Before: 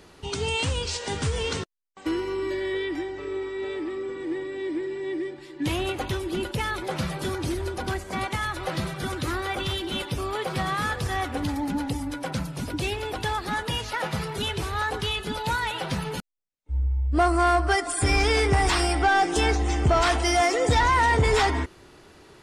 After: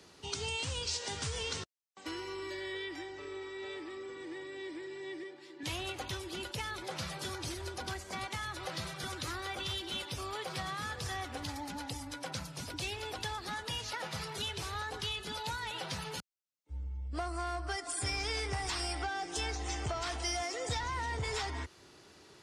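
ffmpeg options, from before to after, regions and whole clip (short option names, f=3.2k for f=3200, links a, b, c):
-filter_complex "[0:a]asettb=1/sr,asplit=3[a][b][c];[a]atrim=end=5.234[d];[b]atrim=start=5.23:end=5.63,asetpts=PTS-STARTPTS,afade=t=in:d=0.004:c=qsin,afade=t=out:st=0.396:d=0.004:c=qsin,highpass=220,highshelf=f=4.1k:g=-6.5[e];[c]atrim=start=5.626[f];[d][e]acrossfade=d=0.004:c1=hsin:c2=qsin[g];[g][f]acrossfade=d=0.004:c1=qsin:c2=hsin,acrossover=split=120|480[h][i][j];[h]acompressor=threshold=-26dB:ratio=4[k];[i]acompressor=threshold=-42dB:ratio=4[l];[j]acompressor=threshold=-30dB:ratio=4[m];[k][l][m]amix=inputs=3:normalize=0,highpass=75,equalizer=f=5.5k:t=o:w=1.4:g=7.5,volume=-8dB"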